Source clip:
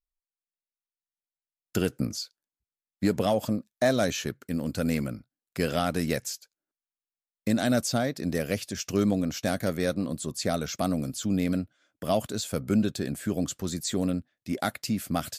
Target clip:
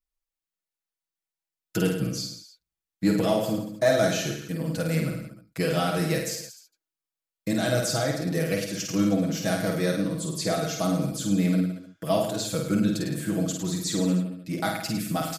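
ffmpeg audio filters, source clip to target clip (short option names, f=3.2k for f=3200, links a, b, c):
-af "aecho=1:1:6.2:0.99,aecho=1:1:50|105|165.5|232|305.3:0.631|0.398|0.251|0.158|0.1,volume=-2.5dB"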